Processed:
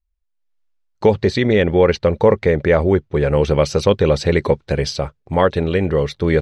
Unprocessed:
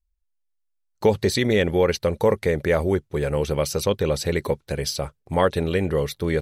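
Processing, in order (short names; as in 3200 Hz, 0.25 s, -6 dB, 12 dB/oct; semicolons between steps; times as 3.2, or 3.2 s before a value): 1.11–3.3 high shelf 6600 Hz -8 dB; AGC gain up to 11.5 dB; air absorption 120 m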